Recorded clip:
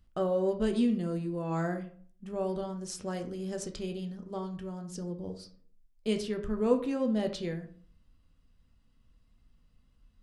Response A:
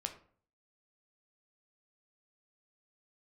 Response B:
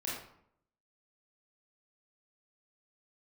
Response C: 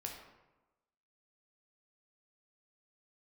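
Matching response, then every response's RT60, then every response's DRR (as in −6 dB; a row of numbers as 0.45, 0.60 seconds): A; 0.50, 0.70, 1.1 seconds; 5.0, −6.5, 0.0 decibels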